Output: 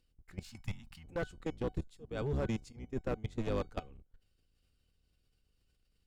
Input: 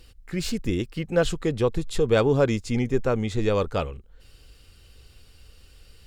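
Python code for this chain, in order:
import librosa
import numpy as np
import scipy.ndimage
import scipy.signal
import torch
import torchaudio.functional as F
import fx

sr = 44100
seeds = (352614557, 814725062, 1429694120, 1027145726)

y = fx.octave_divider(x, sr, octaves=1, level_db=3.0)
y = fx.curve_eq(y, sr, hz=(230.0, 430.0, 820.0), db=(0, -27, 6), at=(0.44, 1.04))
y = fx.level_steps(y, sr, step_db=21)
y = fx.auto_swell(y, sr, attack_ms=373.0, at=(1.89, 2.95), fade=0.02)
y = fx.comb_fb(y, sr, f0_hz=750.0, decay_s=0.21, harmonics='all', damping=0.0, mix_pct=60)
y = fx.clip_asym(y, sr, top_db=-27.0, bottom_db=-22.5)
y = y * 10.0 ** (-3.0 / 20.0)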